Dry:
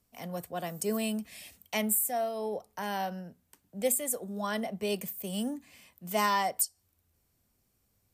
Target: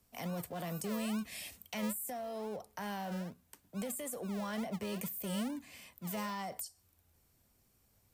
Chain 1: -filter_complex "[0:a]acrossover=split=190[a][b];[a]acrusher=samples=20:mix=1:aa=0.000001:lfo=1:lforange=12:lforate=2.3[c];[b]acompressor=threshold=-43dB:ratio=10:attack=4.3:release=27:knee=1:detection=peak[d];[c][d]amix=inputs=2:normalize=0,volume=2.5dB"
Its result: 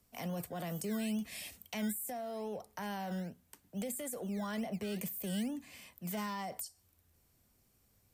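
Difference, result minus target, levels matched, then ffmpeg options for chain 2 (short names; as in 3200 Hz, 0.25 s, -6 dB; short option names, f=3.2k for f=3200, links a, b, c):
decimation with a swept rate: distortion -9 dB
-filter_complex "[0:a]acrossover=split=190[a][b];[a]acrusher=samples=47:mix=1:aa=0.000001:lfo=1:lforange=28.2:lforate=2.3[c];[b]acompressor=threshold=-43dB:ratio=10:attack=4.3:release=27:knee=1:detection=peak[d];[c][d]amix=inputs=2:normalize=0,volume=2.5dB"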